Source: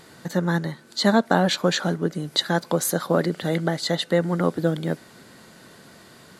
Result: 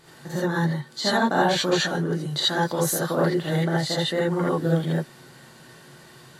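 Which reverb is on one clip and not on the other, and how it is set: gated-style reverb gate 100 ms rising, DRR -7 dB; trim -7.5 dB

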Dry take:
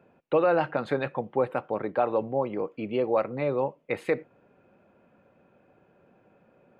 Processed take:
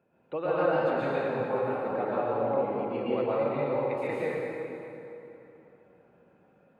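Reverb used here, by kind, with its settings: plate-style reverb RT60 3.1 s, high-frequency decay 0.7×, pre-delay 105 ms, DRR -9 dB; trim -11 dB

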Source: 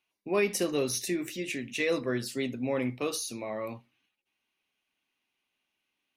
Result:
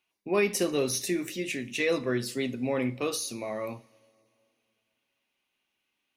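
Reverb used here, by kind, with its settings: two-slope reverb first 0.39 s, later 2.7 s, from -18 dB, DRR 14.5 dB; trim +1.5 dB

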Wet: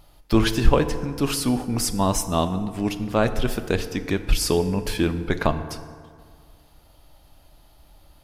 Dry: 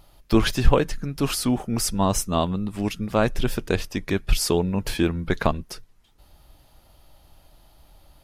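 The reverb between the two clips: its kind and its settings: FDN reverb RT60 2 s, low-frequency decay 0.95×, high-frequency decay 0.5×, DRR 9.5 dB

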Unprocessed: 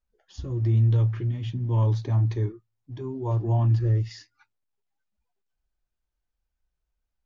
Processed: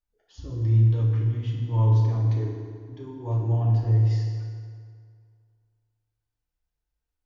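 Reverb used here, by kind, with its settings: FDN reverb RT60 2.1 s, low-frequency decay 0.95×, high-frequency decay 0.7×, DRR -2.5 dB; trim -6 dB

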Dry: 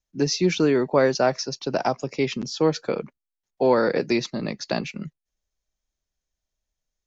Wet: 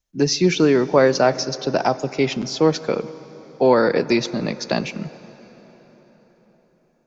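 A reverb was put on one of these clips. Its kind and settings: plate-style reverb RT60 4.9 s, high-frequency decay 0.7×, DRR 15.5 dB; trim +4 dB

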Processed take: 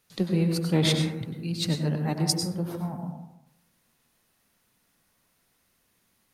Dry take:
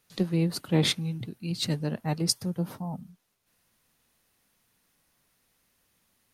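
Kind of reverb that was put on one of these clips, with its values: plate-style reverb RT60 0.91 s, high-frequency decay 0.3×, pre-delay 85 ms, DRR 3 dB

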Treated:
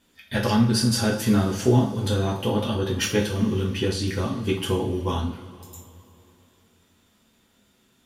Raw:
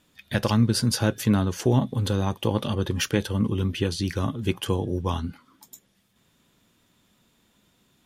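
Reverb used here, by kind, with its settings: two-slope reverb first 0.38 s, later 3.1 s, from -20 dB, DRR -4 dB; trim -3.5 dB

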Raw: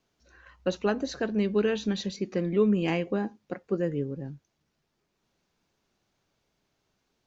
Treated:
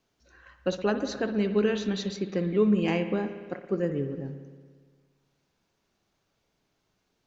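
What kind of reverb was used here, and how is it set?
spring tank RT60 1.6 s, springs 57 ms, chirp 30 ms, DRR 8.5 dB

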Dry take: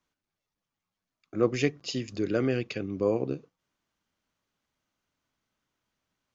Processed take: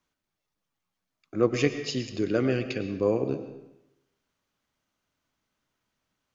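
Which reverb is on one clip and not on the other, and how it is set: algorithmic reverb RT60 0.9 s, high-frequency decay 0.85×, pre-delay 70 ms, DRR 9.5 dB; trim +1.5 dB

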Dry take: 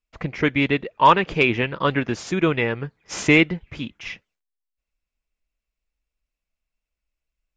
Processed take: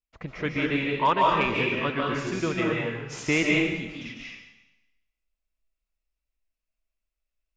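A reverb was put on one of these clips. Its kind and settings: algorithmic reverb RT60 0.97 s, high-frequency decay 1×, pre-delay 110 ms, DRR -3 dB; trim -9 dB

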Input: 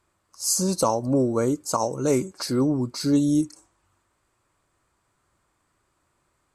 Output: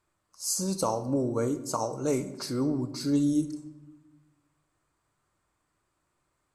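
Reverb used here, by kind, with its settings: simulated room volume 480 m³, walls mixed, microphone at 0.46 m; trim -6.5 dB

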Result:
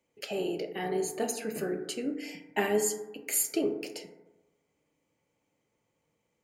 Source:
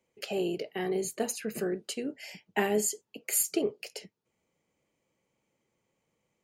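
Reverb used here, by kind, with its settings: FDN reverb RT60 1.1 s, low-frequency decay 0.95×, high-frequency decay 0.3×, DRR 4.5 dB; trim -1 dB

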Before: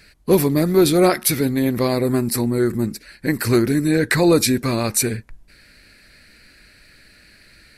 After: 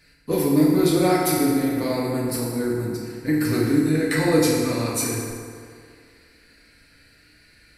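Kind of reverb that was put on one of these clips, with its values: FDN reverb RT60 2.2 s, low-frequency decay 0.8×, high-frequency decay 0.6×, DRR -5 dB; trim -10 dB

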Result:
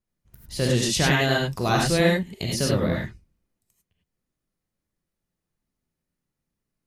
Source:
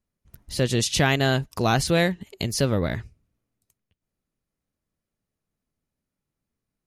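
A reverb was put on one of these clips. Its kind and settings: gated-style reverb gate 120 ms rising, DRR -2 dB; trim -3.5 dB

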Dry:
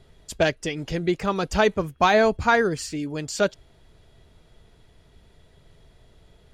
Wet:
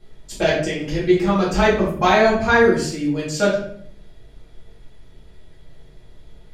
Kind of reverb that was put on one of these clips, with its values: simulated room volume 100 m³, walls mixed, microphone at 2.2 m; trim -5 dB

